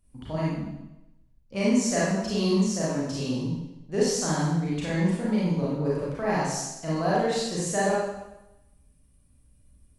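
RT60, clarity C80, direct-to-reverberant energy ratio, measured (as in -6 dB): 0.90 s, 2.0 dB, -7.5 dB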